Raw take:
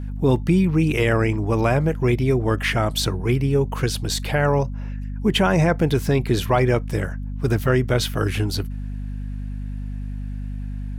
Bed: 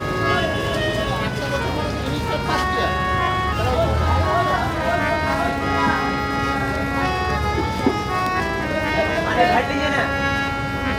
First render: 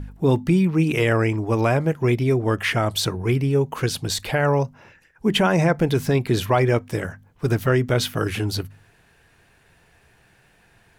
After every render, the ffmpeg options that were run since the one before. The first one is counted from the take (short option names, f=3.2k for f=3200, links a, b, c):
-af "bandreject=f=50:t=h:w=4,bandreject=f=100:t=h:w=4,bandreject=f=150:t=h:w=4,bandreject=f=200:t=h:w=4,bandreject=f=250:t=h:w=4"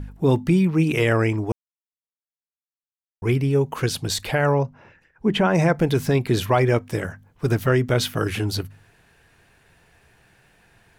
-filter_complex "[0:a]asettb=1/sr,asplit=3[a][b][c];[a]atrim=end=4.534[d];[b]atrim=start=4.53:end=5.55,asetpts=PTS-STARTPTS,afade=t=in:d=0.004:c=qsin,afade=t=out:st=1.016:d=0.004:c=qsin,lowpass=f=2.2k:p=1[e];[c]atrim=start=5.546[f];[d][e]acrossfade=d=0.004:c1=hsin:c2=qsin[g];[g][f]acrossfade=d=0.004:c1=qsin:c2=hsin,asplit=3[h][i][j];[h]atrim=end=1.52,asetpts=PTS-STARTPTS,afade=t=out:st=1.516:d=0.004:c=hsin[k];[i]atrim=start=1.52:end=3.22,asetpts=PTS-STARTPTS,volume=0[l];[j]atrim=start=3.22,asetpts=PTS-STARTPTS,afade=t=in:d=0.004:c=hsin[m];[k][l][m]concat=n=3:v=0:a=1"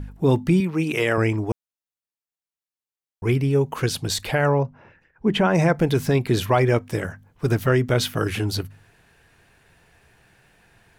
-filter_complex "[0:a]asettb=1/sr,asplit=3[a][b][c];[a]atrim=end=0.604[d];[b]atrim=start=0.6:end=1.18,asetpts=PTS-STARTPTS,afade=t=in:d=0.004:c=qsin,afade=t=out:st=0.576:d=0.004:c=qsin,highpass=f=290:p=1[e];[c]atrim=start=1.176[f];[d][e]acrossfade=d=0.004:c1=hsin:c2=qsin[g];[g][f]acrossfade=d=0.004:c1=qsin:c2=hsin,asettb=1/sr,asplit=3[h][i][j];[h]atrim=end=4.484[k];[i]atrim=start=4.48:end=5.27,asetpts=PTS-STARTPTS,afade=t=in:d=0.004:c=qsin,afade=t=out:st=0.786:d=0.004:c=qsin,lowpass=f=3k:p=1[l];[j]atrim=start=5.266[m];[k][l]acrossfade=d=0.004:c1=hsin:c2=qsin[n];[n][m]acrossfade=d=0.004:c1=qsin:c2=hsin"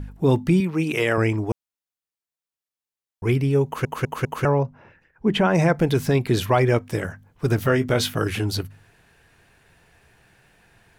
-filter_complex "[0:a]asettb=1/sr,asplit=3[a][b][c];[a]atrim=end=7.564[d];[b]atrim=start=7.56:end=8.14,asetpts=PTS-STARTPTS,afade=t=in:d=0.004:c=qsin,afade=t=out:st=0.576:d=0.004:c=qsin,asplit=2[e][f];[f]adelay=20,volume=-7.5dB[g];[e][g]amix=inputs=2:normalize=0,atrim=end_sample=25578[h];[c]atrim=start=8.136[i];[d][h]acrossfade=d=0.004:c1=hsin:c2=qsin[j];[j][i]acrossfade=d=0.004:c1=qsin:c2=hsin,asplit=5[k][l][m][n][o];[k]atrim=end=3.852[p];[l]atrim=start=3.648:end=3.852[q];[m]atrim=start=3.648:end=3.852[r];[n]atrim=start=3.648:end=3.852[s];[o]atrim=start=4.448[t];[p][q]acrossfade=d=0.004:c1=hsin:c2=hsin[u];[u][r]acrossfade=d=0.004:c1=hsin:c2=hsin[v];[v][s]acrossfade=d=0.004:c1=hsin:c2=hsin[w];[w][t]acrossfade=d=0.004:c1=hsin:c2=hsin"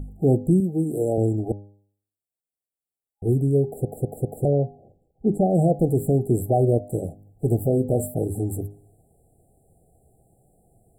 -af "afftfilt=real='re*(1-between(b*sr/4096,820,7300))':imag='im*(1-between(b*sr/4096,820,7300))':win_size=4096:overlap=0.75,bandreject=f=101.6:t=h:w=4,bandreject=f=203.2:t=h:w=4,bandreject=f=304.8:t=h:w=4,bandreject=f=406.4:t=h:w=4,bandreject=f=508:t=h:w=4,bandreject=f=609.6:t=h:w=4,bandreject=f=711.2:t=h:w=4,bandreject=f=812.8:t=h:w=4,bandreject=f=914.4:t=h:w=4,bandreject=f=1.016k:t=h:w=4,bandreject=f=1.1176k:t=h:w=4,bandreject=f=1.2192k:t=h:w=4"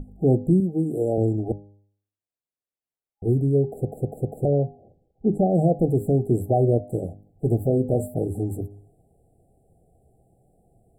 -af "highshelf=f=3k:g=-10,bandreject=f=50:t=h:w=6,bandreject=f=100:t=h:w=6,bandreject=f=150:t=h:w=6"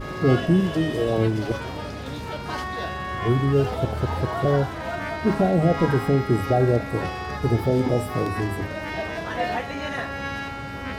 -filter_complex "[1:a]volume=-9.5dB[a];[0:a][a]amix=inputs=2:normalize=0"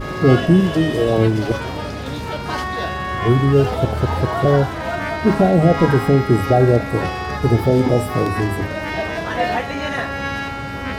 -af "volume=6dB"